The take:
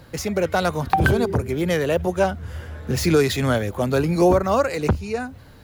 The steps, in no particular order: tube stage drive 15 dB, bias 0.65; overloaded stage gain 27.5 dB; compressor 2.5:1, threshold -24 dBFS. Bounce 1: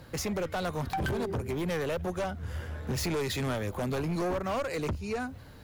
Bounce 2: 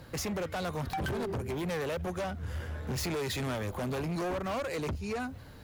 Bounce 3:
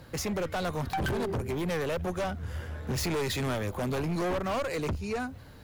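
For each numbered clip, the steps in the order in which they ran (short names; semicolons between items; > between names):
compressor > tube stage > overloaded stage; compressor > overloaded stage > tube stage; tube stage > compressor > overloaded stage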